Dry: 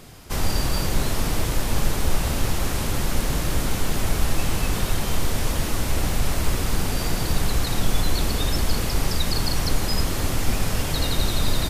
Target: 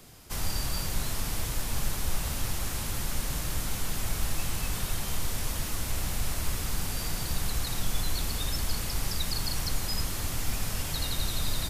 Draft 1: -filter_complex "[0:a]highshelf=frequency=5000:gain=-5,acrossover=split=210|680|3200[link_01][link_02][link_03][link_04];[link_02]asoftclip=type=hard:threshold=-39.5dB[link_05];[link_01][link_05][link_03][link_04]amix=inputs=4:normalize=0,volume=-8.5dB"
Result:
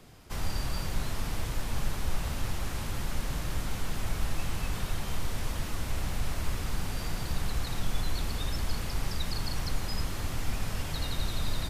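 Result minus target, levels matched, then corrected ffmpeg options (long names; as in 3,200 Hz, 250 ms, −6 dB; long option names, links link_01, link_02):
8,000 Hz band −5.5 dB
-filter_complex "[0:a]highshelf=frequency=5000:gain=6.5,acrossover=split=210|680|3200[link_01][link_02][link_03][link_04];[link_02]asoftclip=type=hard:threshold=-39.5dB[link_05];[link_01][link_05][link_03][link_04]amix=inputs=4:normalize=0,volume=-8.5dB"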